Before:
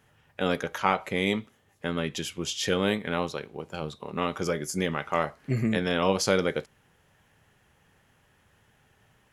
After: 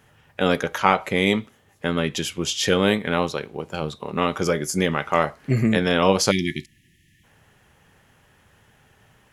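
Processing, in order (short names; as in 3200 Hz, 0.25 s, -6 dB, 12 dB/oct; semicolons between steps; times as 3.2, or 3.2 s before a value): spectral delete 6.31–7.24, 370–1700 Hz; gain +6.5 dB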